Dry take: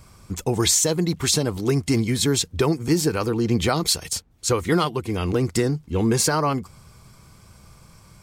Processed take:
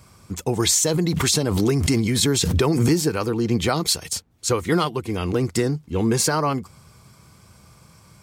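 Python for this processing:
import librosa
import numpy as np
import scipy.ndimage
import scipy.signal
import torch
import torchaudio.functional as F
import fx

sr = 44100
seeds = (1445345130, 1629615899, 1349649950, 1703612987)

y = scipy.signal.sosfilt(scipy.signal.butter(2, 72.0, 'highpass', fs=sr, output='sos'), x)
y = fx.pre_swell(y, sr, db_per_s=22.0, at=(0.87, 3.02))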